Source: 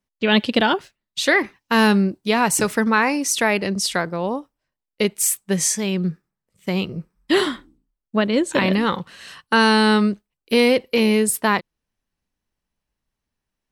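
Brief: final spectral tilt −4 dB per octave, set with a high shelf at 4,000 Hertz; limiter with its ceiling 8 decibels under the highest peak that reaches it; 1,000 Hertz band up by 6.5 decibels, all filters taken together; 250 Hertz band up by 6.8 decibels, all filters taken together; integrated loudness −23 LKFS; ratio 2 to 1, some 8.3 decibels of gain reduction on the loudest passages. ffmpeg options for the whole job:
ffmpeg -i in.wav -af "equalizer=frequency=250:width_type=o:gain=8,equalizer=frequency=1000:width_type=o:gain=7,highshelf=frequency=4000:gain=5.5,acompressor=threshold=-22dB:ratio=2,volume=1.5dB,alimiter=limit=-13.5dB:level=0:latency=1" out.wav

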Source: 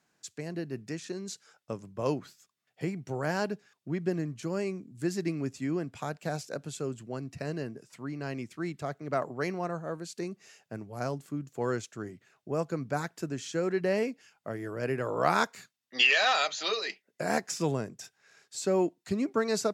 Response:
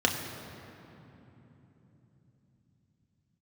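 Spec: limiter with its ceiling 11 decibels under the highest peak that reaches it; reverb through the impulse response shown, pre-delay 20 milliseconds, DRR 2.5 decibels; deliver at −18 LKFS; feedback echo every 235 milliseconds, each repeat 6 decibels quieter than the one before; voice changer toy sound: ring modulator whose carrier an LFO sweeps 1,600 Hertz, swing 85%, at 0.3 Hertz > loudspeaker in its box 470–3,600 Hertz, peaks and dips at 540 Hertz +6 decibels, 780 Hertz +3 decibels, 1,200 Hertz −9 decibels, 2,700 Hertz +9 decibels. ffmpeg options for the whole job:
-filter_complex "[0:a]alimiter=limit=-21dB:level=0:latency=1,aecho=1:1:235|470|705|940|1175|1410:0.501|0.251|0.125|0.0626|0.0313|0.0157,asplit=2[link_01][link_02];[1:a]atrim=start_sample=2205,adelay=20[link_03];[link_02][link_03]afir=irnorm=-1:irlink=0,volume=-15dB[link_04];[link_01][link_04]amix=inputs=2:normalize=0,aeval=exprs='val(0)*sin(2*PI*1600*n/s+1600*0.85/0.3*sin(2*PI*0.3*n/s))':channel_layout=same,highpass=470,equalizer=frequency=540:width_type=q:width=4:gain=6,equalizer=frequency=780:width_type=q:width=4:gain=3,equalizer=frequency=1200:width_type=q:width=4:gain=-9,equalizer=frequency=2700:width_type=q:width=4:gain=9,lowpass=frequency=3600:width=0.5412,lowpass=frequency=3600:width=1.3066,volume=11.5dB"

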